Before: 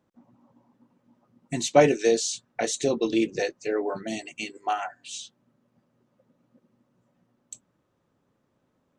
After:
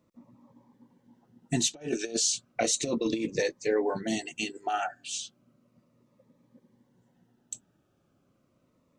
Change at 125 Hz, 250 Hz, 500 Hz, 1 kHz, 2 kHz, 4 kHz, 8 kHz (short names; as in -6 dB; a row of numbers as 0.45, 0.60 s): -3.0, -3.5, -7.0, -5.5, -3.5, +1.5, +2.5 dB